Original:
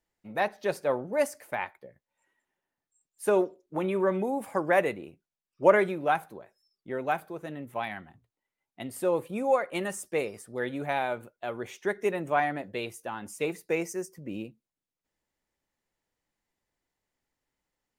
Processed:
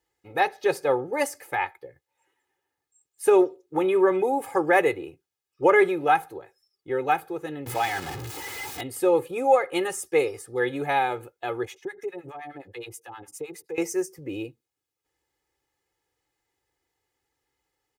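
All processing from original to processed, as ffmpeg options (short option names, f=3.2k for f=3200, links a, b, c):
-filter_complex "[0:a]asettb=1/sr,asplit=3[a][b][c];[a]atrim=end=7.664[d];[b]atrim=start=7.66:end=8.81,asetpts=PTS-STARTPTS,afade=t=in:d=0.004:c=qsin,afade=t=out:st=1.146:d=0.004:c=qsin,aeval=exprs='val(0)+0.5*0.0211*sgn(val(0))':c=same,highpass=52[e];[c]atrim=start=8.806[f];[d][e]acrossfade=d=0.004:c1=hsin:c2=qsin[g];[g][f]acrossfade=d=0.004:c1=qsin:c2=hsin,asettb=1/sr,asplit=3[h][i][j];[h]atrim=end=11.654[k];[i]atrim=start=11.65:end=13.78,asetpts=PTS-STARTPTS,afade=t=in:d=0.004:c=qsin,afade=t=out:st=2.126:d=0.004:c=qsin,acompressor=threshold=-36dB:ratio=4:attack=3.2:release=140:knee=1:detection=peak,acrossover=split=810[l][m];[l]aeval=exprs='val(0)*(1-1/2+1/2*cos(2*PI*9.6*n/s))':c=same[n];[m]aeval=exprs='val(0)*(1-1/2-1/2*cos(2*PI*9.6*n/s))':c=same[o];[n][o]amix=inputs=2:normalize=0[p];[j]atrim=start=13.776[q];[k][p]acrossfade=d=0.004:c1=hsin:c2=qsin[r];[r][q]acrossfade=d=0.004:c1=qsin:c2=hsin,highpass=60,aecho=1:1:2.4:0.91,alimiter=level_in=10.5dB:limit=-1dB:release=50:level=0:latency=1,volume=-7.5dB"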